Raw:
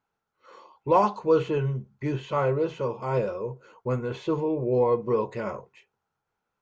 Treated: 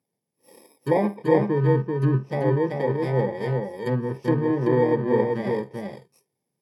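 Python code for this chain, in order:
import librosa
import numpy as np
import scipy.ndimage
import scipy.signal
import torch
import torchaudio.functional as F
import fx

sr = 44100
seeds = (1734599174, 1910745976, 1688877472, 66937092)

p1 = fx.bit_reversed(x, sr, seeds[0], block=32)
p2 = fx.low_shelf(p1, sr, hz=470.0, db=11.0)
p3 = fx.env_lowpass_down(p2, sr, base_hz=1200.0, full_db=-18.0)
p4 = scipy.signal.sosfilt(scipy.signal.butter(4, 130.0, 'highpass', fs=sr, output='sos'), p3)
p5 = p4 + fx.echo_single(p4, sr, ms=386, db=-3.5, dry=0)
p6 = fx.dynamic_eq(p5, sr, hz=1800.0, q=1.1, threshold_db=-39.0, ratio=4.0, max_db=4)
y = p6 * 10.0 ** (-2.0 / 20.0)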